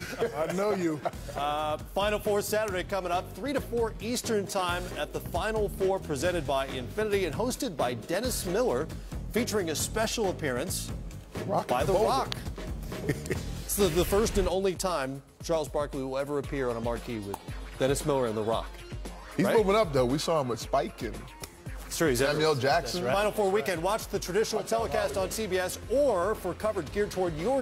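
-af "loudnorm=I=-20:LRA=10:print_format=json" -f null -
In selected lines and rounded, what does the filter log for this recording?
"input_i" : "-29.4",
"input_tp" : "-10.4",
"input_lra" : "2.3",
"input_thresh" : "-39.6",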